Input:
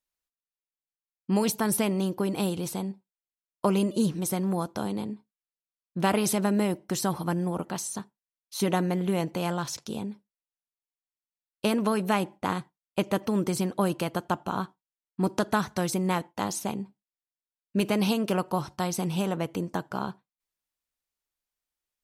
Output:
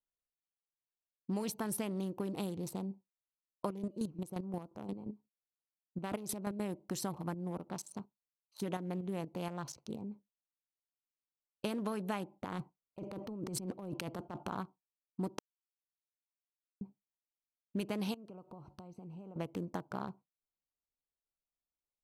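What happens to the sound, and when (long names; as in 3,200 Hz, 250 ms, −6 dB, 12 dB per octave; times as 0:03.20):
0:03.66–0:06.60: square-wave tremolo 5.7 Hz, depth 65%, duty 25%
0:07.34–0:10.11: shaped tremolo saw up 4.2 Hz, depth 55%
0:12.44–0:14.58: compressor whose output falls as the input rises −34 dBFS
0:15.39–0:16.81: silence
0:18.14–0:19.36: downward compressor, threshold −41 dBFS
whole clip: adaptive Wiener filter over 25 samples; downward compressor 2.5 to 1, threshold −31 dBFS; level −5 dB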